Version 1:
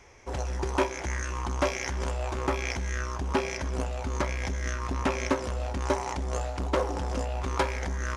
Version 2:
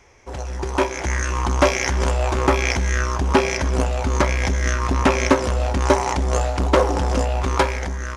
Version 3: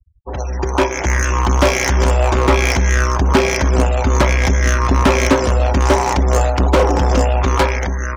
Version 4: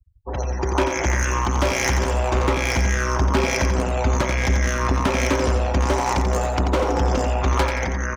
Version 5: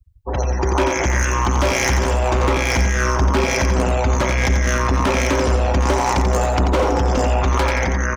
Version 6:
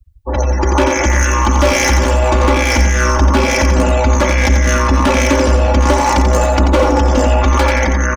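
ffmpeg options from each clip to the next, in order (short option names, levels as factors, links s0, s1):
-af "dynaudnorm=f=360:g=5:m=3.55,volume=1.19"
-filter_complex "[0:a]afftfilt=real='re*gte(hypot(re,im),0.0158)':imag='im*gte(hypot(re,im),0.0158)':win_size=1024:overlap=0.75,acrossover=split=230[s0][s1];[s1]asoftclip=type=hard:threshold=0.15[s2];[s0][s2]amix=inputs=2:normalize=0,volume=2.11"
-filter_complex "[0:a]acompressor=threshold=0.2:ratio=6,asplit=2[s0][s1];[s1]aecho=0:1:88|176|264|352:0.473|0.156|0.0515|0.017[s2];[s0][s2]amix=inputs=2:normalize=0,volume=0.75"
-af "alimiter=limit=0.188:level=0:latency=1:release=14,volume=1.78"
-af "aecho=1:1:3.5:0.69,volume=1.5"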